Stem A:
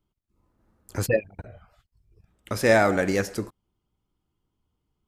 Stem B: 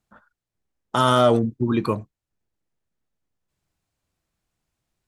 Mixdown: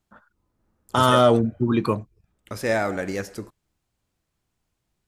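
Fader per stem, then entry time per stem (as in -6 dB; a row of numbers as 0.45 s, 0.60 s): -4.5 dB, +0.5 dB; 0.00 s, 0.00 s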